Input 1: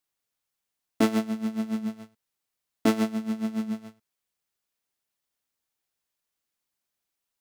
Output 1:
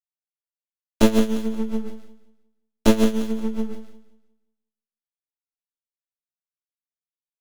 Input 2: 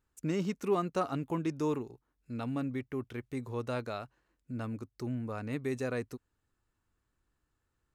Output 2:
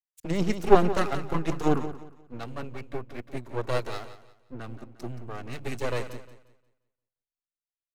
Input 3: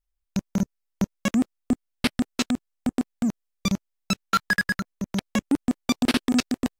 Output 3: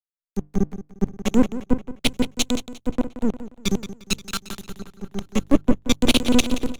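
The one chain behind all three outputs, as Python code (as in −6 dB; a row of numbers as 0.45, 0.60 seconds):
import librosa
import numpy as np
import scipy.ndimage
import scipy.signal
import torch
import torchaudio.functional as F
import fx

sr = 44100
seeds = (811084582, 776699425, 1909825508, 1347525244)

p1 = fx.env_flanger(x, sr, rest_ms=7.5, full_db=-24.0)
p2 = fx.hum_notches(p1, sr, base_hz=50, count=3)
p3 = np.maximum(p2, 0.0)
p4 = p3 + fx.echo_feedback(p3, sr, ms=177, feedback_pct=56, wet_db=-9.0, dry=0)
p5 = fx.band_widen(p4, sr, depth_pct=100)
y = p5 * 10.0 ** (-1.5 / 20.0) / np.max(np.abs(p5))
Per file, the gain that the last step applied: +6.5, +11.5, +7.5 decibels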